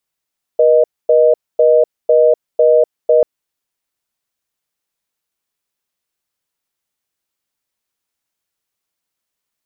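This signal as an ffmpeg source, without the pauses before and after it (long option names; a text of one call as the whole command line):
ffmpeg -f lavfi -i "aevalsrc='0.335*(sin(2*PI*480*t)+sin(2*PI*620*t))*clip(min(mod(t,0.5),0.25-mod(t,0.5))/0.005,0,1)':duration=2.64:sample_rate=44100" out.wav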